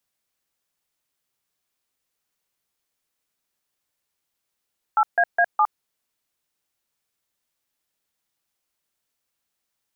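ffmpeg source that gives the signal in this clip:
-f lavfi -i "aevalsrc='0.141*clip(min(mod(t,0.207),0.061-mod(t,0.207))/0.002,0,1)*(eq(floor(t/0.207),0)*(sin(2*PI*852*mod(t,0.207))+sin(2*PI*1336*mod(t,0.207)))+eq(floor(t/0.207),1)*(sin(2*PI*697*mod(t,0.207))+sin(2*PI*1633*mod(t,0.207)))+eq(floor(t/0.207),2)*(sin(2*PI*697*mod(t,0.207))+sin(2*PI*1633*mod(t,0.207)))+eq(floor(t/0.207),3)*(sin(2*PI*852*mod(t,0.207))+sin(2*PI*1209*mod(t,0.207))))':d=0.828:s=44100"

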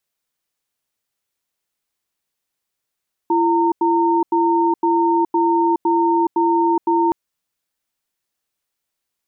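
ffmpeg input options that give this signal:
-f lavfi -i "aevalsrc='0.158*(sin(2*PI*338*t)+sin(2*PI*917*t))*clip(min(mod(t,0.51),0.42-mod(t,0.51))/0.005,0,1)':d=3.82:s=44100"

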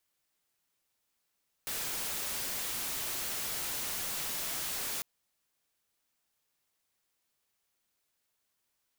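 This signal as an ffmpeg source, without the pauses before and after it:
-f lavfi -i "anoisesrc=c=white:a=0.0274:d=3.35:r=44100:seed=1"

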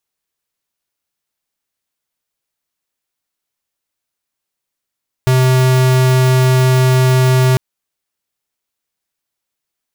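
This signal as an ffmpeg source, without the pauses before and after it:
-f lavfi -i "aevalsrc='0.299*(2*lt(mod(129*t,1),0.5)-1)':d=2.3:s=44100"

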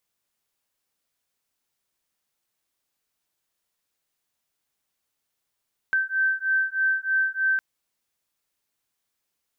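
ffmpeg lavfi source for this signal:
-f lavfi -i "aevalsrc='0.0631*(sin(2*PI*1550*t)+sin(2*PI*1553.2*t))':d=1.66:s=44100"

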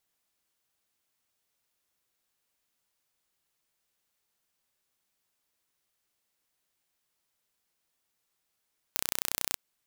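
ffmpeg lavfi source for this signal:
-f lavfi -i "aevalsrc='0.794*eq(mod(n,1427),0)':d=0.6:s=44100"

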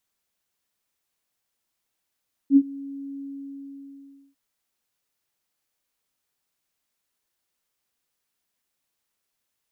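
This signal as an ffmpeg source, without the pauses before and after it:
-f lavfi -i "aevalsrc='0.355*sin(2*PI*277*t)':d=1.85:s=44100,afade=t=in:d=0.064,afade=t=out:st=0.064:d=0.056:silence=0.0668,afade=t=out:st=0.7:d=1.15"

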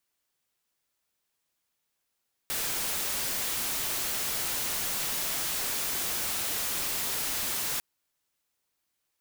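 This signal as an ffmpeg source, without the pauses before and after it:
-f lavfi -i "anoisesrc=c=white:a=0.0488:d=5.3:r=44100:seed=1"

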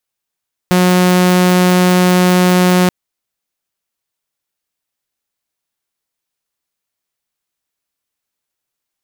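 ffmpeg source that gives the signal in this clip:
-f lavfi -i "aevalsrc='0.531*(2*mod(181*t,1)-1)':d=2.18:s=44100"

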